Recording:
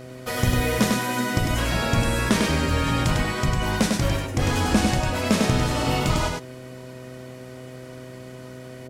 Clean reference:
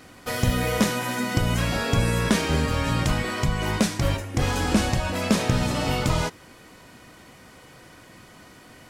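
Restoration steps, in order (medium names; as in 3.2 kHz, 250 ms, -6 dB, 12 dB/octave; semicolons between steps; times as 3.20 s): de-hum 127.4 Hz, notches 5; inverse comb 100 ms -3.5 dB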